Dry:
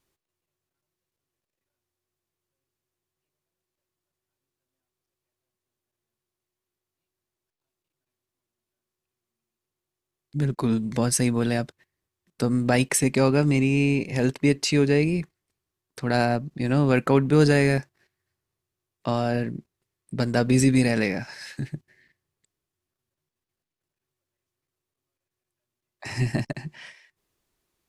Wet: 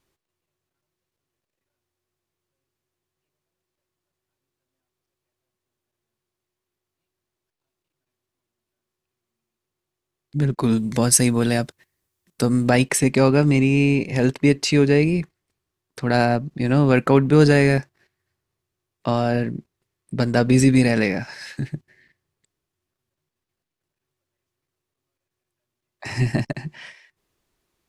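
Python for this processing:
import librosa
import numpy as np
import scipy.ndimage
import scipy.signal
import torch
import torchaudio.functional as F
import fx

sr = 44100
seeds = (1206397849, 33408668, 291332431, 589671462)

y = fx.high_shelf(x, sr, hz=6300.0, db=fx.steps((0.0, -5.0), (10.62, 7.5), (12.69, -4.5)))
y = F.gain(torch.from_numpy(y), 4.0).numpy()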